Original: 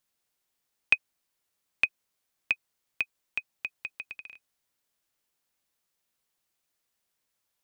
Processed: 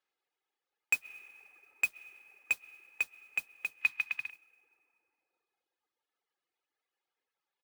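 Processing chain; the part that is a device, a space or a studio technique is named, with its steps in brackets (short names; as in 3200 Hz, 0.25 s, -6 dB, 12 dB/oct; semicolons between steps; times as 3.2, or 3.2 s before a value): comb 2.4 ms, depth 51%; digital reverb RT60 4.8 s, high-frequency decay 0.3×, pre-delay 85 ms, DRR 9 dB; reverb removal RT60 2 s; carbon microphone (BPF 320–2800 Hz; soft clip -20 dBFS, distortion -8 dB; modulation noise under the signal 17 dB); 3.81–4.3 graphic EQ 125/250/500/1000/2000/4000 Hz +8/+7/-11/+9/+8/+8 dB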